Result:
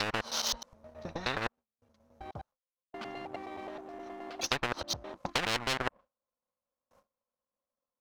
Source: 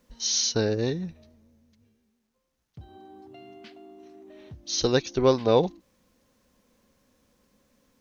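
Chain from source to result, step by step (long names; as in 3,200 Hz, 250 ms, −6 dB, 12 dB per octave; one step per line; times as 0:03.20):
slices reordered back to front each 105 ms, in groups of 7
noise gate with hold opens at −54 dBFS
flat-topped bell 840 Hz +14.5 dB
in parallel at −3 dB: brickwall limiter −8 dBFS, peak gain reduction 11 dB
on the sum: treble cut that deepens with the level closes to 720 Hz, closed at −10.5 dBFS
power curve on the samples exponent 1.4
soft clipping −3.5 dBFS, distortion −16 dB
every bin compressed towards the loudest bin 10 to 1
level −7 dB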